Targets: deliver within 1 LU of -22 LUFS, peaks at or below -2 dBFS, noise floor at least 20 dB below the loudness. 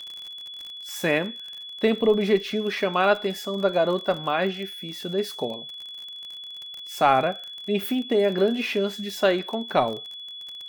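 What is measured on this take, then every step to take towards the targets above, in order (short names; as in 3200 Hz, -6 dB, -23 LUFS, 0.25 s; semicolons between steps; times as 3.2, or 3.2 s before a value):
ticks 33/s; steady tone 3400 Hz; tone level -36 dBFS; loudness -24.5 LUFS; peak -6.0 dBFS; loudness target -22.0 LUFS
-> de-click; notch 3400 Hz, Q 30; gain +2.5 dB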